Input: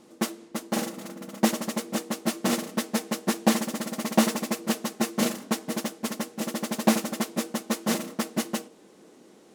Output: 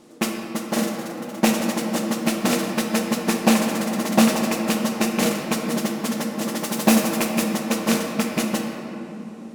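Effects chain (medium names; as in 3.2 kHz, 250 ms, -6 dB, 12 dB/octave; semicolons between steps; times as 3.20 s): rattle on loud lows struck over -25 dBFS, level -17 dBFS; 6.59–7.48 s: treble shelf 8.9 kHz +6.5 dB; simulated room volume 170 m³, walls hard, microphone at 0.37 m; trim +3.5 dB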